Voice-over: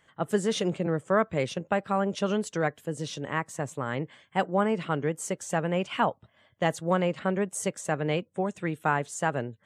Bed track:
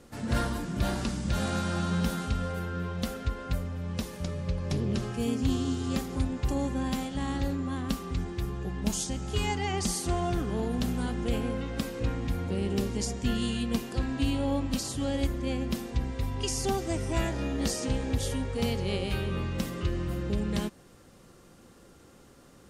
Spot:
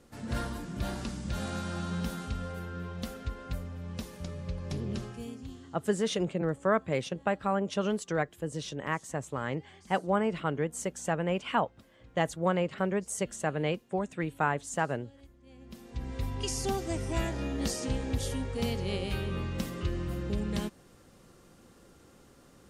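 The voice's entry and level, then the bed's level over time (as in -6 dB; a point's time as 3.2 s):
5.55 s, -2.5 dB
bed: 5 s -5.5 dB
5.91 s -27 dB
15.41 s -27 dB
16.15 s -2.5 dB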